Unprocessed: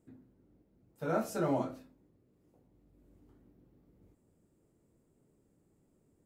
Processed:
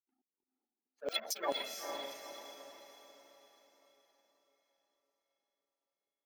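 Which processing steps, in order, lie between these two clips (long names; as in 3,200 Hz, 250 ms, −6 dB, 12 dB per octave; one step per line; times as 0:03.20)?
samples in bit-reversed order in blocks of 16 samples
gate on every frequency bin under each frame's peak −15 dB strong
Butterworth high-pass 190 Hz 72 dB per octave
spectral tilt +4 dB per octave
in parallel at +2.5 dB: brickwall limiter −24 dBFS, peak gain reduction 10 dB
on the sum: power curve on the samples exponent 1.4
auto-filter band-pass saw down 4.6 Hz 560–7,600 Hz
on a send: feedback delay with all-pass diffusion 463 ms, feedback 46%, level −5 dB
on the sum: level +9 dB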